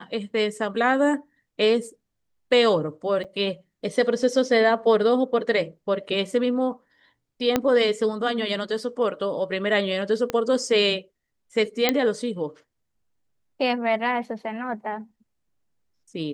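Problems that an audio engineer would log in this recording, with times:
3.24–3.25 gap 7.1 ms
7.56 pop -6 dBFS
10.3 pop -12 dBFS
11.89 pop -4 dBFS

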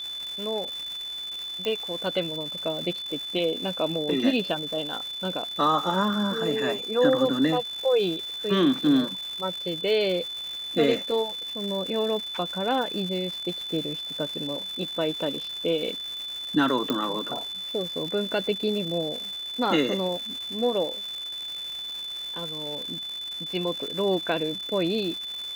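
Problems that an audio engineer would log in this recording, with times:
crackle 410/s -33 dBFS
tone 3500 Hz -32 dBFS
1.65 pop -16 dBFS
16.9 pop -12 dBFS

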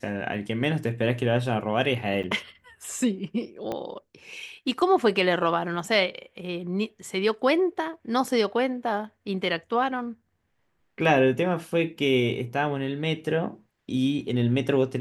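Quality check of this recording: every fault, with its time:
2.23–2.24 gap 7 ms
3.72 pop -18 dBFS

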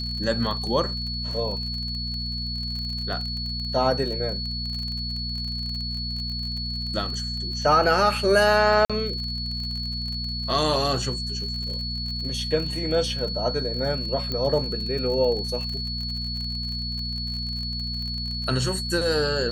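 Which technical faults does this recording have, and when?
crackle 39/s -31 dBFS
hum 60 Hz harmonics 4 -32 dBFS
tone 4400 Hz -30 dBFS
8.85–8.9 gap 46 ms
14.32 pop -15 dBFS

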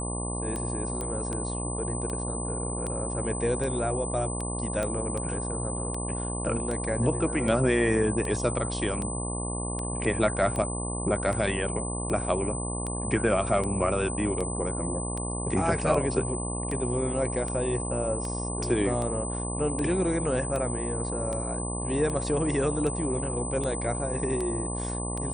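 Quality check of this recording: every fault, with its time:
buzz 60 Hz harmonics 19 -33 dBFS
tick 78 rpm -20 dBFS
tone 8100 Hz -34 dBFS
1.01 pop -19 dBFS
4.83 pop -17 dBFS

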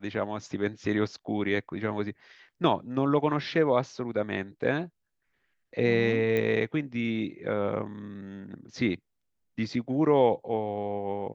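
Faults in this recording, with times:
6.37 pop -17 dBFS

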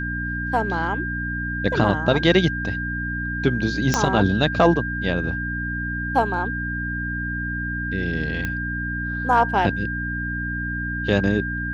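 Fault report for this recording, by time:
hum 60 Hz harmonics 5 -29 dBFS
tone 1600 Hz -27 dBFS
3.94 pop -5 dBFS
8.45 pop -13 dBFS

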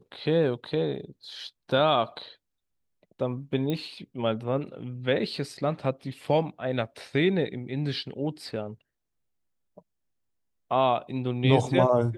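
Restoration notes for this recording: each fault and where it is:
3.7 pop -18 dBFS

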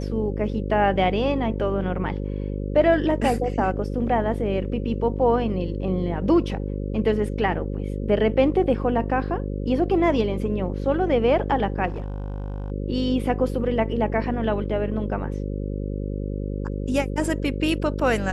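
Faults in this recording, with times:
buzz 50 Hz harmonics 11 -28 dBFS
11.87–12.72 clipped -26 dBFS

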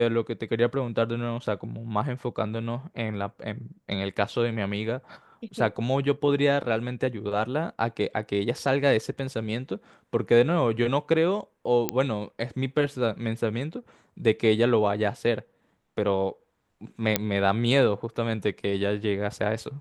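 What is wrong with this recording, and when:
11.89 pop -8 dBFS
17.16 pop -4 dBFS

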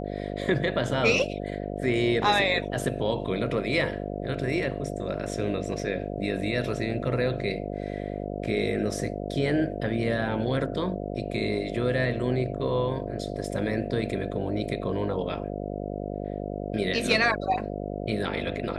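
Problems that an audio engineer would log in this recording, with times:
buzz 50 Hz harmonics 14 -33 dBFS

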